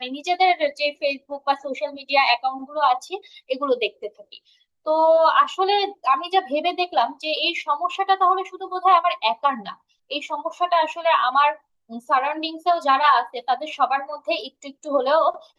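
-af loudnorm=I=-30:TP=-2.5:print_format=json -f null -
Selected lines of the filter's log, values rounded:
"input_i" : "-21.1",
"input_tp" : "-3.9",
"input_lra" : "1.9",
"input_thresh" : "-31.6",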